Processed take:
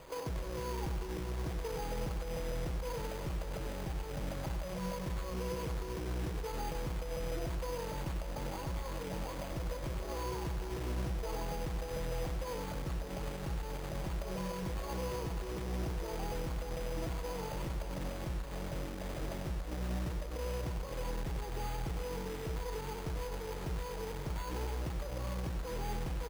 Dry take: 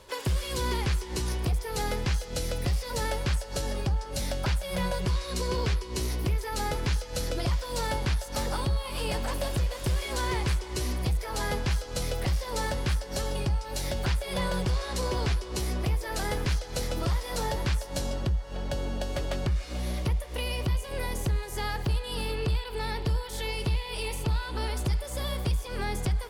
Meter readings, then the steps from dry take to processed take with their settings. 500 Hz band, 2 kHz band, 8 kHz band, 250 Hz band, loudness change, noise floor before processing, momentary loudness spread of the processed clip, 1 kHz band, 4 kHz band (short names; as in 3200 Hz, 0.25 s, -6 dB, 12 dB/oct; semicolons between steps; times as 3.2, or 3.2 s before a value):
-6.0 dB, -11.0 dB, -12.0 dB, -6.5 dB, -9.0 dB, -40 dBFS, 2 LU, -7.5 dB, -13.5 dB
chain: inverse Chebyshev low-pass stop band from 2000 Hz, stop band 40 dB; comb 6.2 ms, depth 48%; limiter -30 dBFS, peak gain reduction 11.5 dB; soft clip -32 dBFS, distortion -19 dB; companded quantiser 4-bit; echo 97 ms -8 dB; careless resampling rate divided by 8×, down none, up hold; gain -1 dB